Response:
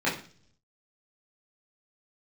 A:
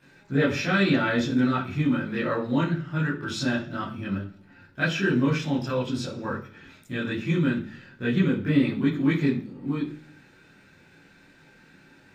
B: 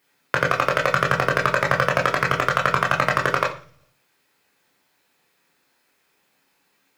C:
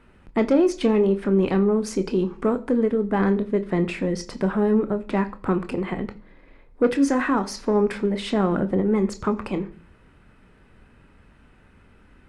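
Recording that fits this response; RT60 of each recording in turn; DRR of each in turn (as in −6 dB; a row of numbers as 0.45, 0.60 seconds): A; 0.45, 0.45, 0.45 seconds; −8.5, −1.5, 8.5 decibels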